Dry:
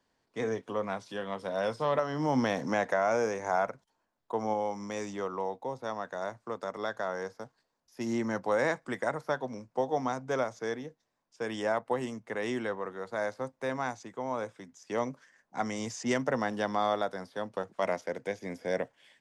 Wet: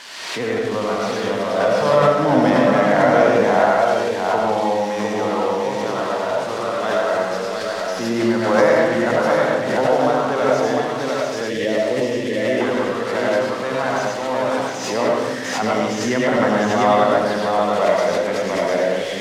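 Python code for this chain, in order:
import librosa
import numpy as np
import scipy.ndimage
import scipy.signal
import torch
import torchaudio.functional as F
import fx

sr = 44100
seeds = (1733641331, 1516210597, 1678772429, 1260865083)

y = x + 0.5 * 10.0 ** (-25.5 / 20.0) * np.diff(np.sign(x), prepend=np.sign(x[:1]))
y = scipy.signal.sosfilt(scipy.signal.butter(2, 3400.0, 'lowpass', fs=sr, output='sos'), y)
y = fx.echo_multitap(y, sr, ms=(104, 703), db=(-6.5, -3.5))
y = fx.rev_freeverb(y, sr, rt60_s=0.96, hf_ratio=0.4, predelay_ms=55, drr_db=-2.0)
y = fx.spec_box(y, sr, start_s=11.5, length_s=1.1, low_hz=660.0, high_hz=1700.0, gain_db=-13)
y = fx.pre_swell(y, sr, db_per_s=42.0)
y = F.gain(torch.from_numpy(y), 7.0).numpy()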